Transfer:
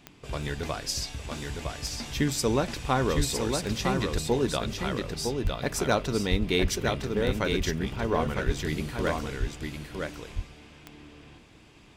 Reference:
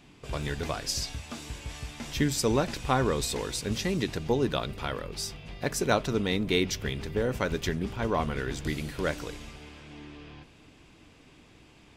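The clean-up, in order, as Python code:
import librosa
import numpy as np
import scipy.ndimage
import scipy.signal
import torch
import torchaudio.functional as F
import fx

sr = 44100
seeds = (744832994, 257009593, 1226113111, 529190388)

y = fx.fix_declip(x, sr, threshold_db=-13.0)
y = fx.fix_declick_ar(y, sr, threshold=10.0)
y = fx.fix_deplosive(y, sr, at_s=(3.16, 5.43, 6.3, 6.61, 8.45, 9.39))
y = fx.fix_echo_inverse(y, sr, delay_ms=958, level_db=-4.5)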